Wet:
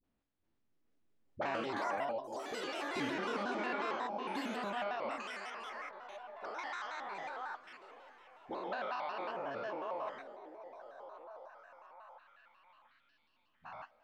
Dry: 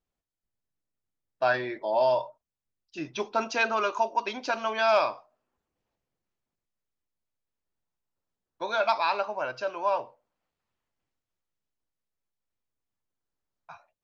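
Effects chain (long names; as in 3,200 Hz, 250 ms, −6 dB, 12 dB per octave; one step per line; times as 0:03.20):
spectrum averaged block by block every 200 ms
low-pass filter 3,200 Hz 12 dB per octave
parametric band 260 Hz +12.5 dB 0.33 octaves
downward compressor 5 to 1, threshold −44 dBFS, peak gain reduction 20 dB
all-pass dispersion highs, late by 41 ms, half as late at 490 Hz
flanger 2 Hz, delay 7.3 ms, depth 8.8 ms, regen −58%
delay with pitch and tempo change per echo 422 ms, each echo +6 semitones, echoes 3
on a send: echo through a band-pass that steps 694 ms, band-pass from 360 Hz, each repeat 0.7 octaves, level −8 dB
on the sum: pitch modulation by a square or saw wave square 5.5 Hz, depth 160 cents
level +9.5 dB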